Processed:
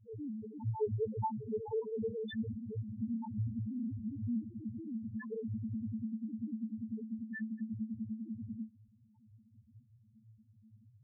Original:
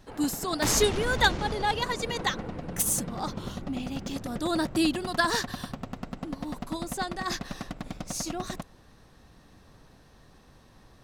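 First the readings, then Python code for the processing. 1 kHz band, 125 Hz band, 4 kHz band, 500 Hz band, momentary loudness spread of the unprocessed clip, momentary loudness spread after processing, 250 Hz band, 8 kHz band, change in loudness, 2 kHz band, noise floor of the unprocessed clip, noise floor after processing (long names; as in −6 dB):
−15.5 dB, −3.5 dB, below −25 dB, −8.0 dB, 15 LU, 7 LU, −5.5 dB, below −40 dB, −10.5 dB, −23.5 dB, −56 dBFS, −66 dBFS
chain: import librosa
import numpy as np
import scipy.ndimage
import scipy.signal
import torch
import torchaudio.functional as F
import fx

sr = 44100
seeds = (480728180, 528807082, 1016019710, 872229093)

p1 = fx.leveller(x, sr, passes=1)
p2 = fx.over_compress(p1, sr, threshold_db=-31.0, ratio=-1.0)
p3 = p1 + F.gain(torch.from_numpy(p2), 2.0).numpy()
p4 = fx.octave_resonator(p3, sr, note='A', decay_s=0.2)
p5 = fx.spec_topn(p4, sr, count=1)
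y = F.gain(torch.from_numpy(p5), 4.0).numpy()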